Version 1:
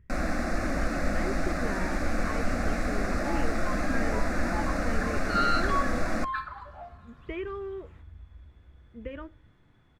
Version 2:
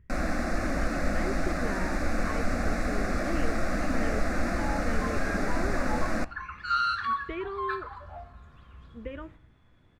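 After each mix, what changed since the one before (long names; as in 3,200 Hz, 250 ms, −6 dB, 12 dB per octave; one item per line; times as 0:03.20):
second sound: entry +1.35 s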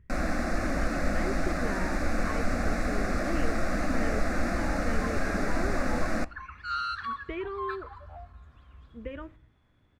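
second sound: send off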